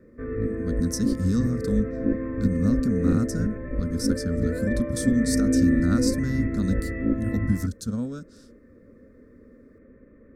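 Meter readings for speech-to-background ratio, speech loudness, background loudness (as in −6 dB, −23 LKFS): −0.5 dB, −27.5 LKFS, −27.0 LKFS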